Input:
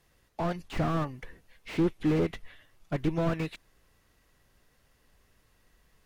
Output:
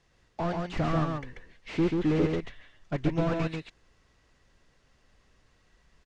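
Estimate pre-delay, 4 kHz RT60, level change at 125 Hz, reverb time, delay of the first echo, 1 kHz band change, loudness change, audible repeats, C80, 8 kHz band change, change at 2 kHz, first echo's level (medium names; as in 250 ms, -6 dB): no reverb, no reverb, +2.0 dB, no reverb, 137 ms, +1.5 dB, +1.0 dB, 1, no reverb, no reading, +1.5 dB, -3.5 dB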